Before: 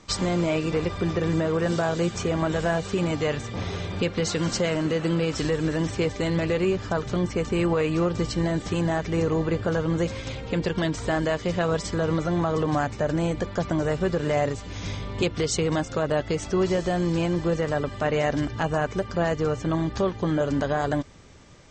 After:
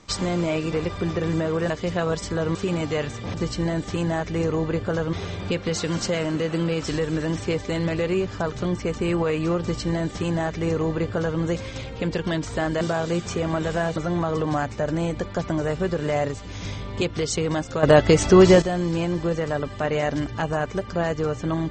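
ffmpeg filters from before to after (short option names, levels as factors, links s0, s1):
-filter_complex "[0:a]asplit=9[s0][s1][s2][s3][s4][s5][s6][s7][s8];[s0]atrim=end=1.702[s9];[s1]atrim=start=11.318:end=12.172[s10];[s2]atrim=start=2.848:end=3.642[s11];[s3]atrim=start=8.118:end=9.912[s12];[s4]atrim=start=3.638:end=11.322[s13];[s5]atrim=start=1.698:end=2.852[s14];[s6]atrim=start=12.168:end=16.042[s15];[s7]atrim=start=16.038:end=16.832,asetpts=PTS-STARTPTS,volume=3.35[s16];[s8]atrim=start=16.828[s17];[s9][s10]acrossfade=d=0.004:c1=hsin:c2=hsin[s18];[s18][s11]acrossfade=d=0.004:c1=hsin:c2=hsin[s19];[s19][s12]acrossfade=d=0.004:c1=hsin:c2=hsin[s20];[s20][s13]acrossfade=d=0.004:c1=hsin:c2=hsin[s21];[s21][s14]acrossfade=d=0.004:c1=hsin:c2=hsin[s22];[s22][s15]acrossfade=d=0.004:c1=hsin:c2=hsin[s23];[s23][s16]acrossfade=d=0.004:c1=hsin:c2=hsin[s24];[s24][s17]acrossfade=d=0.004:c1=hsin:c2=hsin"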